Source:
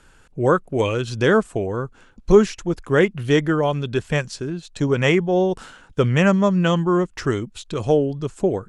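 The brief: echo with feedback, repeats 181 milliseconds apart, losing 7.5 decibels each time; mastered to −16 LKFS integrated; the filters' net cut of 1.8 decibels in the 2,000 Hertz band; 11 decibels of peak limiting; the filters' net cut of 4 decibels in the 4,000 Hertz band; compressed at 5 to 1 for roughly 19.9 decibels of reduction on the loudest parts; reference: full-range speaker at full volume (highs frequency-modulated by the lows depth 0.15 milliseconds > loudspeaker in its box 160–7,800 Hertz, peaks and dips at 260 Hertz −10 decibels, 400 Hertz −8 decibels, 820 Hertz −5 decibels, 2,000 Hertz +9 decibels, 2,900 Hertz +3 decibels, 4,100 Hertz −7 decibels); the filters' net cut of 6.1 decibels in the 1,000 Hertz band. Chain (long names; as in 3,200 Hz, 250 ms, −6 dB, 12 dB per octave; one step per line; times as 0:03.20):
parametric band 1,000 Hz −4.5 dB
parametric band 2,000 Hz −5.5 dB
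parametric band 4,000 Hz −4 dB
downward compressor 5 to 1, threshold −31 dBFS
brickwall limiter −30.5 dBFS
repeating echo 181 ms, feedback 42%, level −7.5 dB
highs frequency-modulated by the lows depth 0.15 ms
loudspeaker in its box 160–7,800 Hz, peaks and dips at 260 Hz −10 dB, 400 Hz −8 dB, 820 Hz −5 dB, 2,000 Hz +9 dB, 2,900 Hz +3 dB, 4,100 Hz −7 dB
level +27 dB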